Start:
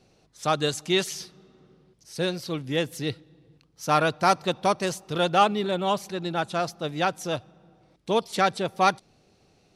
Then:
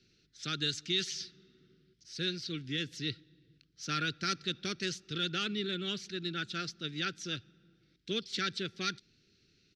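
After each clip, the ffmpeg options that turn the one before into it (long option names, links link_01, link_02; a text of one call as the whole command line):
ffmpeg -i in.wav -filter_complex "[0:a]firequalizer=gain_entry='entry(380,0);entry(590,-20);entry(940,-29);entry(1400,3);entry(2500,4);entry(3800,8);entry(5400,6);entry(9500,-14);entry(14000,-21)':delay=0.05:min_phase=1,acrossover=split=180|3800[link_01][link_02][link_03];[link_02]alimiter=limit=-18dB:level=0:latency=1:release=33[link_04];[link_01][link_04][link_03]amix=inputs=3:normalize=0,volume=-8dB" out.wav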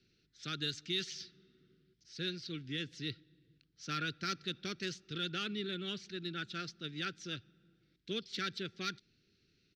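ffmpeg -i in.wav -af "adynamicsmooth=sensitivity=2:basefreq=7100,volume=-3.5dB" out.wav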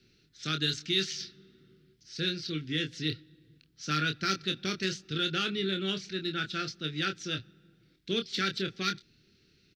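ffmpeg -i in.wav -filter_complex "[0:a]asplit=2[link_01][link_02];[link_02]adelay=26,volume=-6.5dB[link_03];[link_01][link_03]amix=inputs=2:normalize=0,volume=7dB" out.wav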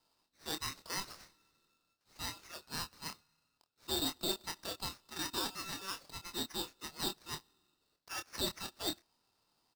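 ffmpeg -i in.wav -af "highpass=frequency=550:width_type=q:width=0.5412,highpass=frequency=550:width_type=q:width=1.307,lowpass=frequency=3000:width_type=q:width=0.5176,lowpass=frequency=3000:width_type=q:width=0.7071,lowpass=frequency=3000:width_type=q:width=1.932,afreqshift=270,aeval=exprs='val(0)*sgn(sin(2*PI*2000*n/s))':channel_layout=same,volume=-3dB" out.wav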